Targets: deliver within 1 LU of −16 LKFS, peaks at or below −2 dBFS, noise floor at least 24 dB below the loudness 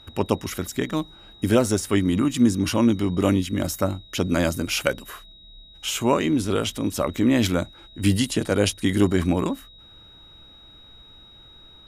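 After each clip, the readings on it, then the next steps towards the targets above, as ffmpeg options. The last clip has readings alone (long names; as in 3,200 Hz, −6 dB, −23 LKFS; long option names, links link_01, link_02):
interfering tone 3,800 Hz; level of the tone −47 dBFS; integrated loudness −23.0 LKFS; sample peak −4.0 dBFS; target loudness −16.0 LKFS
→ -af "bandreject=frequency=3800:width=30"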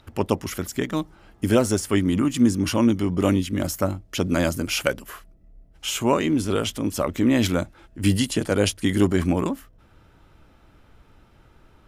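interfering tone none found; integrated loudness −23.0 LKFS; sample peak −4.0 dBFS; target loudness −16.0 LKFS
→ -af "volume=7dB,alimiter=limit=-2dB:level=0:latency=1"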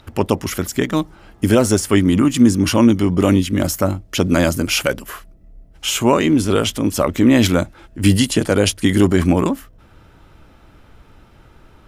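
integrated loudness −16.5 LKFS; sample peak −2.0 dBFS; background noise floor −49 dBFS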